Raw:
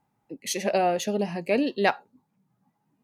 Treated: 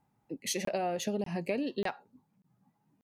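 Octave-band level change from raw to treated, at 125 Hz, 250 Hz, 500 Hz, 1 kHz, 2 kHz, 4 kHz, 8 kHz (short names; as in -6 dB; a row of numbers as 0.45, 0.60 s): -4.5, -6.5, -8.5, -10.5, -10.5, -6.0, -4.5 dB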